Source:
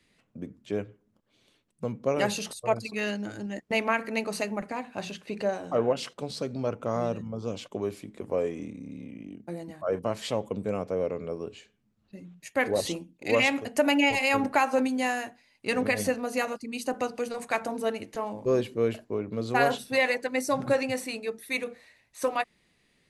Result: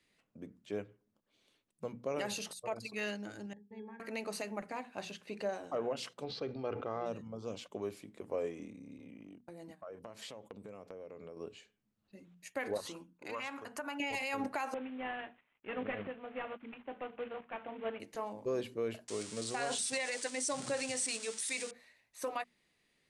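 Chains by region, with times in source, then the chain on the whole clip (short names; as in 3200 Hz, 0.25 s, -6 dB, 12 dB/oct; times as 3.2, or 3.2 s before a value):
3.53–4 notches 50/100/150/200/250/300/350/400/450/500 Hz + octave resonator G#, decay 0.18 s
6.24–7.06 LPF 4200 Hz 24 dB/oct + comb 2.5 ms, depth 39% + sustainer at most 59 dB/s
8.98–11.37 gate -45 dBFS, range -12 dB + compressor 8:1, threshold -36 dBFS
12.77–14 band shelf 1200 Hz +12 dB 1 oct + compressor 2.5:1, threshold -36 dBFS + mismatched tape noise reduction decoder only
14.74–18 CVSD 16 kbps + tremolo saw up 1.5 Hz, depth 65%
19.08–21.71 switching spikes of -24 dBFS + elliptic low-pass 9000 Hz + high shelf 6000 Hz +9 dB
whole clip: low shelf 230 Hz -6 dB; notches 60/120/180/240 Hz; limiter -20 dBFS; gain -6.5 dB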